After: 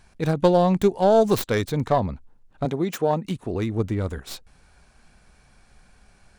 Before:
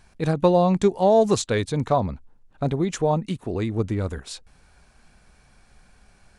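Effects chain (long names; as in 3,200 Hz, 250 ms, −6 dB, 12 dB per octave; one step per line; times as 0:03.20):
stylus tracing distortion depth 0.22 ms
0:02.65–0:03.25: high-pass filter 170 Hz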